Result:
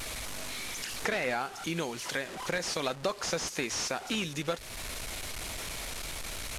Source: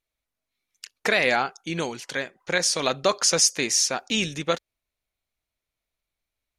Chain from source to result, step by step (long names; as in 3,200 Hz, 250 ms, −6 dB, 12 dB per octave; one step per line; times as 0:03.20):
linear delta modulator 64 kbit/s, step −33.5 dBFS
downward compressor 2.5 to 1, threshold −35 dBFS, peak gain reduction 12.5 dB
level +2 dB